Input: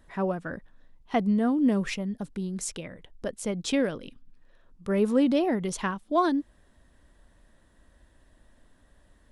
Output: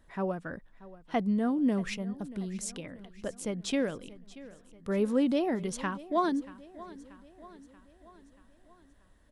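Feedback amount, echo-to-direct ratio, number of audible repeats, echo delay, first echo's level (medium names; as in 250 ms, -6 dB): 55%, -17.0 dB, 4, 633 ms, -18.5 dB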